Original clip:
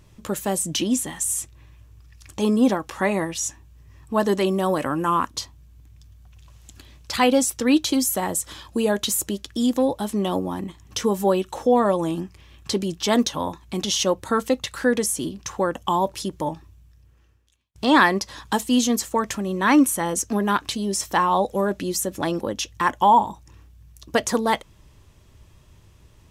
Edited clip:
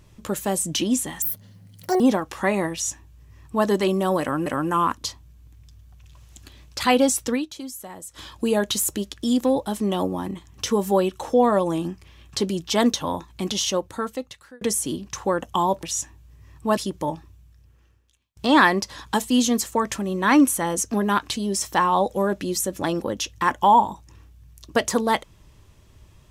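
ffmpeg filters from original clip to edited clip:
-filter_complex "[0:a]asplit=9[s0][s1][s2][s3][s4][s5][s6][s7][s8];[s0]atrim=end=1.224[s9];[s1]atrim=start=1.22:end=2.58,asetpts=PTS-STARTPTS,asetrate=76734,aresample=44100[s10];[s2]atrim=start=2.576:end=5.042[s11];[s3]atrim=start=4.788:end=8.06,asetpts=PTS-STARTPTS,afade=t=out:st=2.872:d=0.4:c=exp:silence=0.199526[s12];[s4]atrim=start=8.06:end=8.13,asetpts=PTS-STARTPTS,volume=0.2[s13];[s5]atrim=start=8.13:end=14.94,asetpts=PTS-STARTPTS,afade=t=in:d=0.4:c=exp:silence=0.199526,afade=t=out:st=5.63:d=1.18[s14];[s6]atrim=start=14.94:end=16.162,asetpts=PTS-STARTPTS,afade=t=in:d=0.004:c=hsin[s15];[s7]atrim=start=3.298:end=4.242[s16];[s8]atrim=start=16.158[s17];[s9][s10]acrossfade=d=0.004:c1=hsin:c2=hsin[s18];[s18][s11]acrossfade=d=0.004:c1=hsin:c2=hsin[s19];[s12][s13][s14][s15]concat=n=4:v=0:a=1[s20];[s19][s20]acrossfade=d=0.004:c1=hsin:c2=hsin[s21];[s21][s16]acrossfade=d=0.004:c1=hsin:c2=hsin[s22];[s22][s17]acrossfade=d=0.004:c1=hsin:c2=hsin"

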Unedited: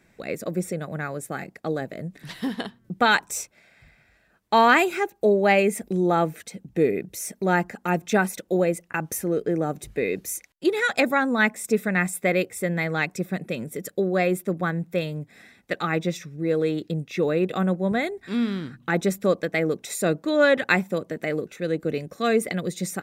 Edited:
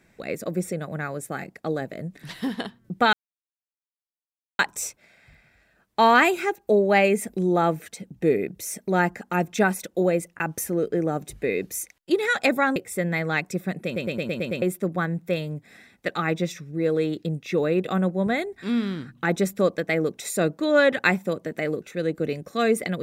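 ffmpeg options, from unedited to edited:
-filter_complex "[0:a]asplit=10[s0][s1][s2][s3][s4][s5][s6][s7][s8][s9];[s0]atrim=end=3.13,asetpts=PTS-STARTPTS,afade=t=out:st=3.126:d=0.004:c=hsin,apad=pad_dur=1.46[s10];[s1]atrim=start=3.13:end=11.302,asetpts=PTS-STARTPTS,afade=t=in:d=0.004:c=hsin[s11];[s2]atrim=start=12.408:end=13.612[s12];[s3]atrim=start=13.498:end=13.612[s13];[s4]atrim=start=13.498:end=13.612[s14];[s5]atrim=start=13.498:end=13.612[s15];[s6]atrim=start=13.498:end=13.612[s16];[s7]atrim=start=13.498:end=13.612[s17];[s8]atrim=start=13.498:end=13.612[s18];[s9]atrim=start=14.268[s19];[s10][s11]concat=n=2:v=0:a=1[s20];[s20][s12]acrossfade=d=0.004:c1=hsin:c2=hsin[s21];[s21][s13]acrossfade=d=0.004:c1=hsin:c2=hsin[s22];[s22][s14]acrossfade=d=0.004:c1=hsin:c2=hsin[s23];[s23][s15]acrossfade=d=0.004:c1=hsin:c2=hsin[s24];[s24][s16]acrossfade=d=0.004:c1=hsin:c2=hsin[s25];[s25][s17]acrossfade=d=0.004:c1=hsin:c2=hsin[s26];[s26][s18]acrossfade=d=0.004:c1=hsin:c2=hsin[s27];[s27][s19]acrossfade=d=0.004:c1=hsin:c2=hsin"

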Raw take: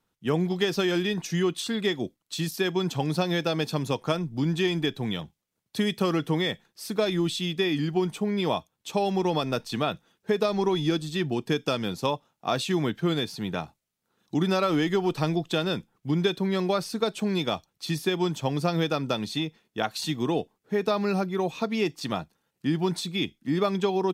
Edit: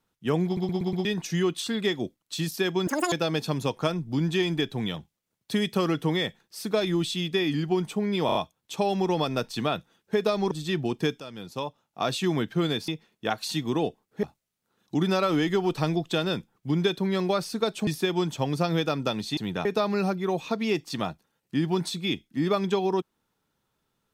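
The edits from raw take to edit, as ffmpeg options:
-filter_complex "[0:a]asplit=18[s0][s1][s2][s3][s4][s5][s6][s7][s8][s9][s10][s11][s12][s13][s14][s15][s16][s17];[s0]atrim=end=0.572[s18];[s1]atrim=start=0.448:end=0.572[s19];[s2]atrim=start=0.448:end=0.572[s20];[s3]atrim=start=0.448:end=0.572[s21];[s4]atrim=start=0.448:end=0.572[s22];[s5]atrim=start=1.048:end=2.874[s23];[s6]atrim=start=2.87:end=3.37,asetpts=PTS-STARTPTS,asetrate=87759,aresample=44100,atrim=end_sample=11080,asetpts=PTS-STARTPTS[s24];[s7]atrim=start=3.366:end=8.542[s25];[s8]atrim=start=8.508:end=8.542[s26];[s9]atrim=start=8.508:end=8.542[s27];[s10]atrim=start=8.508:end=10.672[s28];[s11]atrim=start=10.978:end=11.67,asetpts=PTS-STARTPTS,afade=t=out:st=0.688:d=0.004:c=hsin:silence=0.158489[s29];[s12]atrim=start=11.67:end=13.352,asetpts=PTS-STARTPTS,afade=t=in:d=0.97:silence=0.158489[s30];[s13]atrim=start=19.408:end=20.762[s31];[s14]atrim=start=13.628:end=17.272[s32];[s15]atrim=start=17.908:end=19.412[s33];[s16]atrim=start=13.348:end=13.632[s34];[s17]atrim=start=20.758[s35];[s18][s19]acrossfade=d=0.004:c1=hsin:c2=hsin[s36];[s36][s20]acrossfade=d=0.004:c1=hsin:c2=hsin[s37];[s37][s21]acrossfade=d=0.004:c1=hsin:c2=hsin[s38];[s38][s22]acrossfade=d=0.004:c1=hsin:c2=hsin[s39];[s39][s23]acrossfade=d=0.004:c1=hsin:c2=hsin[s40];[s40][s24]acrossfade=d=0.004:c1=hsin:c2=hsin[s41];[s41][s25]acrossfade=d=0.004:c1=hsin:c2=hsin[s42];[s42][s26]acrossfade=d=0.004:c1=hsin:c2=hsin[s43];[s43][s27]acrossfade=d=0.004:c1=hsin:c2=hsin[s44];[s44][s28]acrossfade=d=0.004:c1=hsin:c2=hsin[s45];[s29][s30]concat=n=2:v=0:a=1[s46];[s45][s46]acrossfade=d=0.004:c1=hsin:c2=hsin[s47];[s47][s31]acrossfade=d=0.004:c1=hsin:c2=hsin[s48];[s48][s32]acrossfade=d=0.004:c1=hsin:c2=hsin[s49];[s49][s33]acrossfade=d=0.004:c1=hsin:c2=hsin[s50];[s50][s34]acrossfade=d=0.004:c1=hsin:c2=hsin[s51];[s51][s35]acrossfade=d=0.004:c1=hsin:c2=hsin"

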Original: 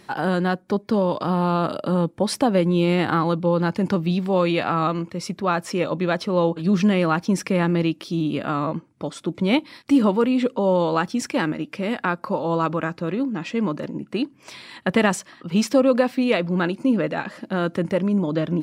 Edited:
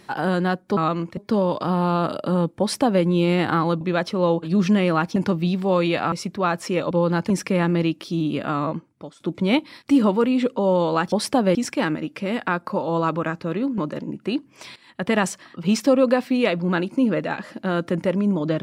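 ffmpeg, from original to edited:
-filter_complex "[0:a]asplit=13[s0][s1][s2][s3][s4][s5][s6][s7][s8][s9][s10][s11][s12];[s0]atrim=end=0.772[s13];[s1]atrim=start=4.758:end=5.162[s14];[s2]atrim=start=0.768:end=3.412[s15];[s3]atrim=start=5.948:end=7.302[s16];[s4]atrim=start=3.798:end=4.762[s17];[s5]atrim=start=5.158:end=5.952[s18];[s6]atrim=start=3.408:end=3.802[s19];[s7]atrim=start=7.298:end=9.2,asetpts=PTS-STARTPTS,afade=t=out:st=1.392:d=0.51:silence=0.133352[s20];[s8]atrim=start=9.2:end=11.122,asetpts=PTS-STARTPTS,afade=t=in:d=0.004:c=hsin:silence=0.133352[s21];[s9]atrim=start=2.198:end=2.632[s22];[s10]atrim=start=11.118:end=13.352[s23];[s11]atrim=start=13.648:end=14.63,asetpts=PTS-STARTPTS,afade=t=out:st=0.978:d=0.004:c=hsin:silence=0.158489[s24];[s12]atrim=start=14.63,asetpts=PTS-STARTPTS,afade=t=in:d=0.52:silence=0.158489[s25];[s13][s14]acrossfade=d=0.004:c1=hsin:c2=hsin[s26];[s26][s15]acrossfade=d=0.004:c1=hsin:c2=hsin[s27];[s27][s16]acrossfade=d=0.004:c1=hsin:c2=hsin[s28];[s28][s17]acrossfade=d=0.004:c1=hsin:c2=hsin[s29];[s29][s18]acrossfade=d=0.004:c1=hsin:c2=hsin[s30];[s30][s19]acrossfade=d=0.004:c1=hsin:c2=hsin[s31];[s20][s21]concat=n=2:v=0:a=1[s32];[s31][s32]acrossfade=d=0.004:c1=hsin:c2=hsin[s33];[s33][s22]acrossfade=d=0.004:c1=hsin:c2=hsin[s34];[s34][s23]acrossfade=d=0.004:c1=hsin:c2=hsin[s35];[s24][s25]concat=n=2:v=0:a=1[s36];[s35][s36]acrossfade=d=0.004:c1=hsin:c2=hsin"

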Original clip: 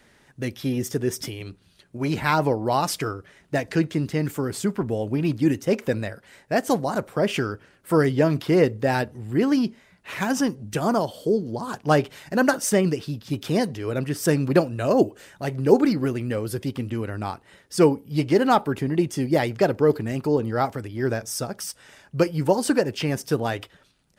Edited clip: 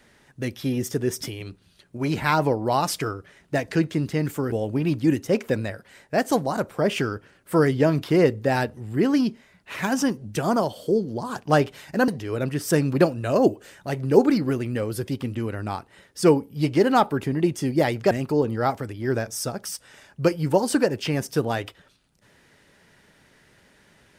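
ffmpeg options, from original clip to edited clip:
-filter_complex "[0:a]asplit=4[s0][s1][s2][s3];[s0]atrim=end=4.522[s4];[s1]atrim=start=4.898:end=12.462[s5];[s2]atrim=start=13.628:end=19.662[s6];[s3]atrim=start=20.058[s7];[s4][s5]acrossfade=d=0.004:c1=hsin:c2=hsin[s8];[s8][s6]acrossfade=d=0.004:c1=hsin:c2=hsin[s9];[s9][s7]acrossfade=d=0.004:c1=hsin:c2=hsin"

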